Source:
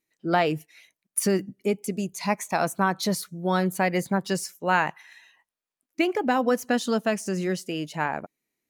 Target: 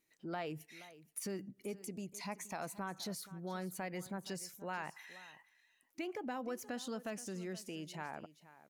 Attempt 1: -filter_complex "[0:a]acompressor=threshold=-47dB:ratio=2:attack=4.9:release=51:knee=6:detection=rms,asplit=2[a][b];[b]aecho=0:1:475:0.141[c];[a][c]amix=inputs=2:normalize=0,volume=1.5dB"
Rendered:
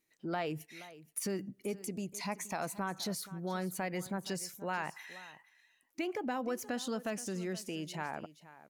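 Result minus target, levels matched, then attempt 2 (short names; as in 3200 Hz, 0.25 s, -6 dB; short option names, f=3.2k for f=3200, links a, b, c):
compressor: peak gain reduction -5 dB
-filter_complex "[0:a]acompressor=threshold=-57.5dB:ratio=2:attack=4.9:release=51:knee=6:detection=rms,asplit=2[a][b];[b]aecho=0:1:475:0.141[c];[a][c]amix=inputs=2:normalize=0,volume=1.5dB"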